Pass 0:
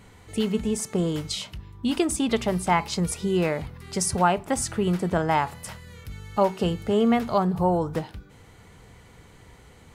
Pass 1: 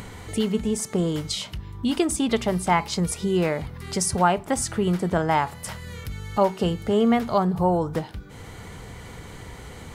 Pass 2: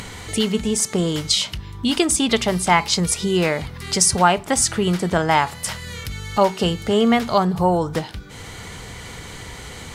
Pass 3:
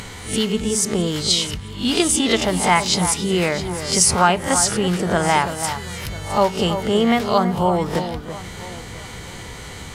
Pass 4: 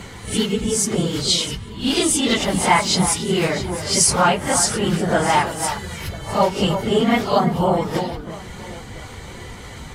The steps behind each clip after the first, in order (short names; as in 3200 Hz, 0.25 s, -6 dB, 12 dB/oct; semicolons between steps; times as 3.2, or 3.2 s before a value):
notch 2600 Hz, Q 24; in parallel at +2 dB: upward compressor, threshold -24 dBFS; on the sum: gain -6 dB
bell 4900 Hz +8.5 dB 3 oct; gain +2.5 dB
spectral swells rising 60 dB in 0.34 s; echo with dull and thin repeats by turns 0.331 s, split 1800 Hz, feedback 57%, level -9 dB; gain -1 dB
phase scrambler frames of 50 ms; mismatched tape noise reduction decoder only